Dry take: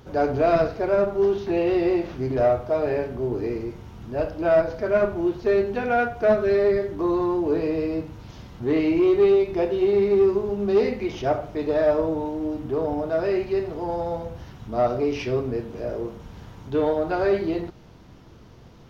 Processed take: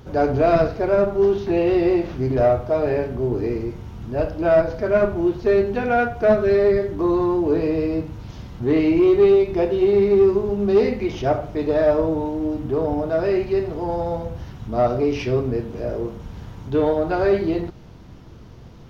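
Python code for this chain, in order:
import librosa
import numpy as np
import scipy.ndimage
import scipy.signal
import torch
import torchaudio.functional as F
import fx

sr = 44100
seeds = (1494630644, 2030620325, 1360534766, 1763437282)

y = fx.low_shelf(x, sr, hz=210.0, db=5.5)
y = y * librosa.db_to_amplitude(2.0)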